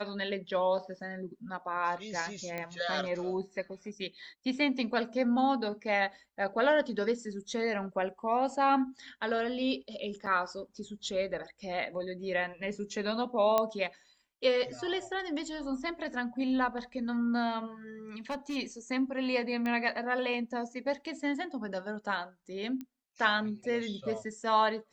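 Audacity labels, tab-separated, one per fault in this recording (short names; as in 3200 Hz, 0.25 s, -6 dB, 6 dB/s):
2.580000	2.580000	pop -22 dBFS
10.260000	10.270000	gap 7 ms
13.580000	13.580000	pop -13 dBFS
18.300000	18.570000	clipped -31 dBFS
19.660000	19.660000	pop -22 dBFS
22.810000	22.810000	pop -28 dBFS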